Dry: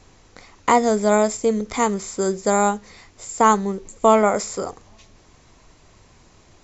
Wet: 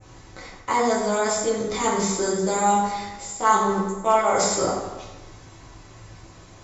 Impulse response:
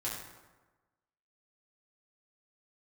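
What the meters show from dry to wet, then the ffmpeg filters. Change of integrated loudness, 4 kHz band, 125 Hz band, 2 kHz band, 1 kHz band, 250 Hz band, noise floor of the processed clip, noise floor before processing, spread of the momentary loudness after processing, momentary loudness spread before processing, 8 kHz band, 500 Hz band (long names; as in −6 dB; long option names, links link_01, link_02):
−2.5 dB, +3.5 dB, −1.0 dB, −1.0 dB, −1.0 dB, −4.5 dB, −47 dBFS, −53 dBFS, 16 LU, 13 LU, can't be measured, −3.5 dB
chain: -filter_complex "[0:a]aeval=exprs='0.75*(cos(1*acos(clip(val(0)/0.75,-1,1)))-cos(1*PI/2))+0.0188*(cos(2*acos(clip(val(0)/0.75,-1,1)))-cos(2*PI/2))+0.0596*(cos(3*acos(clip(val(0)/0.75,-1,1)))-cos(3*PI/2))':channel_layout=same,areverse,acompressor=threshold=-25dB:ratio=6,areverse,adynamicequalizer=threshold=0.00282:dfrequency=4100:dqfactor=0.88:tfrequency=4100:tqfactor=0.88:attack=5:release=100:ratio=0.375:range=2.5:mode=boostabove:tftype=bell,acontrast=35[link_01];[1:a]atrim=start_sample=2205[link_02];[link_01][link_02]afir=irnorm=-1:irlink=0"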